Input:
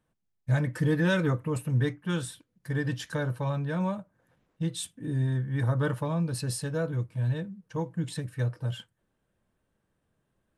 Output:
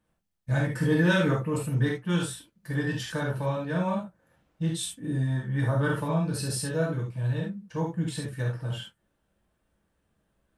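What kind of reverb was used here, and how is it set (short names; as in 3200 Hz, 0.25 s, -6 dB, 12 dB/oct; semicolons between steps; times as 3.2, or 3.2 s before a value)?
non-linear reverb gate 0.1 s flat, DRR -2.5 dB; gain -1 dB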